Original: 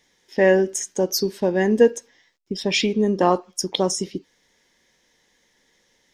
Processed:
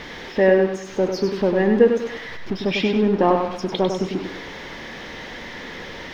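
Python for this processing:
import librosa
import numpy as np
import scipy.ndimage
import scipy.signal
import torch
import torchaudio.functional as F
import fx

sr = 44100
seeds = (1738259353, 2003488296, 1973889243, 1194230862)

y = x + 0.5 * 10.0 ** (-25.5 / 20.0) * np.sign(x)
y = fx.air_absorb(y, sr, metres=280.0)
y = fx.echo_feedback(y, sr, ms=99, feedback_pct=38, wet_db=-6.0)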